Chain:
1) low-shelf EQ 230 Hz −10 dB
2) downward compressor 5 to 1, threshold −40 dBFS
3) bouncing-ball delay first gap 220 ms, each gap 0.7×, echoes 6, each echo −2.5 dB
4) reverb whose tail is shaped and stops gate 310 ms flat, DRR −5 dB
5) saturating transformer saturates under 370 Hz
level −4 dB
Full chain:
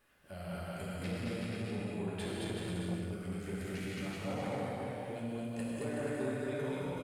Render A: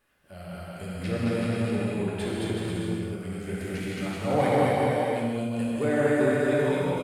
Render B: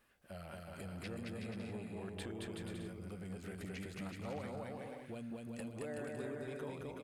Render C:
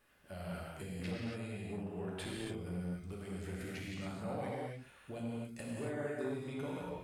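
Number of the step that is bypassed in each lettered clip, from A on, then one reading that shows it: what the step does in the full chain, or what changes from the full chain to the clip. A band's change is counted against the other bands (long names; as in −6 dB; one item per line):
2, average gain reduction 8.0 dB
4, change in integrated loudness −6.5 LU
3, change in integrated loudness −3.5 LU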